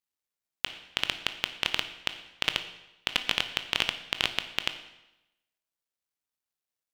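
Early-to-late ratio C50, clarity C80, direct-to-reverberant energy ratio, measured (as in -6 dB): 11.5 dB, 13.0 dB, 8.5 dB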